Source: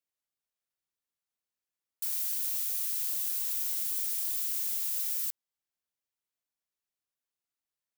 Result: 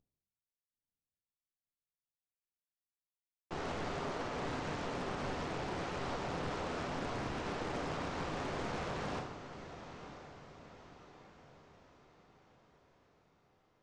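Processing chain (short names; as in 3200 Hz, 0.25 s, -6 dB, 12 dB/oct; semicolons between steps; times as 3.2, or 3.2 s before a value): CVSD 64 kbps; LPF 1000 Hz 6 dB/oct; low shelf 150 Hz -8.5 dB; diffused feedback echo 0.555 s, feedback 49%, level -11 dB; reverb RT60 0.55 s, pre-delay 6 ms, DRR -1.5 dB; speed mistake 78 rpm record played at 45 rpm; Doppler distortion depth 0.43 ms; gain +6.5 dB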